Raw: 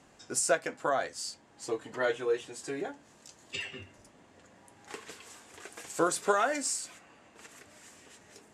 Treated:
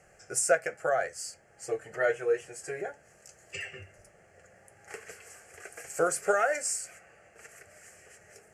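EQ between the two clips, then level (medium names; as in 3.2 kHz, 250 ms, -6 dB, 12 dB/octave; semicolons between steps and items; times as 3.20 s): static phaser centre 1 kHz, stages 6; +3.5 dB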